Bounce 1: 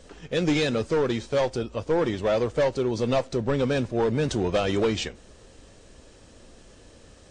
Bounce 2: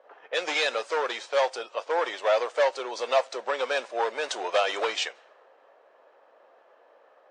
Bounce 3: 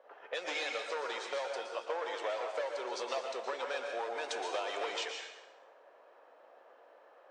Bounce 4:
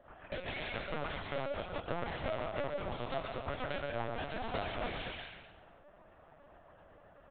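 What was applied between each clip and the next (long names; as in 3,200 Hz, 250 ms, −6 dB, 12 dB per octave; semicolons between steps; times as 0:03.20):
low-pass that shuts in the quiet parts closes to 920 Hz, open at −24 dBFS; high-pass filter 620 Hz 24 dB per octave; high-shelf EQ 4,700 Hz −7 dB; level +5 dB
downward compressor 5 to 1, threshold −32 dBFS, peak gain reduction 13.5 dB; dense smooth reverb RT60 0.96 s, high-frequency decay 0.85×, pre-delay 105 ms, DRR 2.5 dB; level −3.5 dB
phase distortion by the signal itself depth 0.22 ms; repeating echo 128 ms, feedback 39%, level −11 dB; linear-prediction vocoder at 8 kHz pitch kept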